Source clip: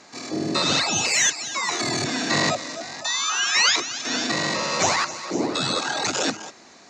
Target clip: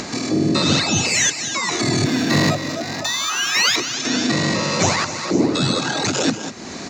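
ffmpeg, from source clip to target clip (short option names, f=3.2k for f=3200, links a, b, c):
-filter_complex "[0:a]firequalizer=gain_entry='entry(250,0);entry(750,-7);entry(2400,-5)':delay=0.05:min_phase=1,acompressor=mode=upward:threshold=-25dB:ratio=2.5,lowshelf=f=150:g=8.5,asettb=1/sr,asplit=3[a][b][c];[a]atrim=end=2.054[d];[b]atrim=start=2.05:end=3.76,asetpts=PTS-STARTPTS,afade=t=in:d=0.004:c=qsin,afade=t=out:st=1.706:d=0.004:c=qsin,adynamicsmooth=sensitivity=6.5:basefreq=5.1k[e];[c]atrim=start=3.756[f];[d][e]acrossfade=d=0.004:c1=hsin:c2=qsin[g];[g][f]acrossfade=d=0.004:c1=qsin:c2=hsin,asplit=2[h][i];[i]aecho=0:1:189:0.2[j];[h][j]amix=inputs=2:normalize=0,volume=7dB"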